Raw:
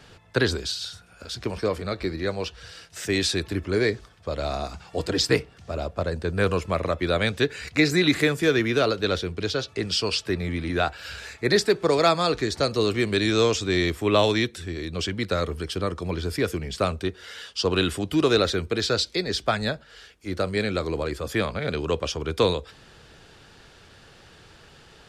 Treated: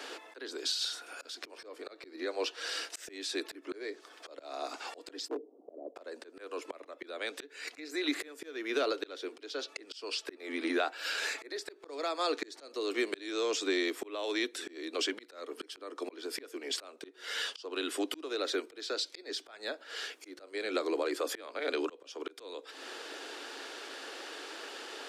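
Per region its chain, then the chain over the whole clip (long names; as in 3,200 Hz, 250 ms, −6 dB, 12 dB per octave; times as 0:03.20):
0:05.28–0:05.96: Gaussian smoothing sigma 16 samples + hard clipping −21 dBFS
whole clip: Butterworth high-pass 270 Hz 72 dB per octave; downward compressor 4 to 1, threshold −39 dBFS; volume swells 377 ms; level +8 dB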